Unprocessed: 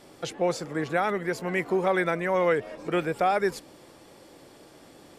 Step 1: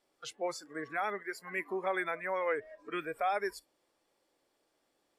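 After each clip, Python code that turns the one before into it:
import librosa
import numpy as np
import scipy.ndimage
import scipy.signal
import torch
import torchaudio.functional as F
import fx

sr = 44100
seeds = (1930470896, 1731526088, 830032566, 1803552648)

y = fx.noise_reduce_blind(x, sr, reduce_db=17)
y = fx.peak_eq(y, sr, hz=120.0, db=-13.0, octaves=2.5)
y = y * librosa.db_to_amplitude(-6.0)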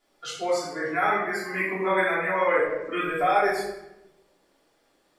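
y = fx.room_shoebox(x, sr, seeds[0], volume_m3=360.0, walls='mixed', distance_m=3.2)
y = y * librosa.db_to_amplitude(2.0)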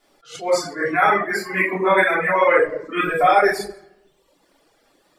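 y = fx.wow_flutter(x, sr, seeds[1], rate_hz=2.1, depth_cents=20.0)
y = fx.dereverb_blind(y, sr, rt60_s=0.92)
y = fx.attack_slew(y, sr, db_per_s=170.0)
y = y * librosa.db_to_amplitude(8.5)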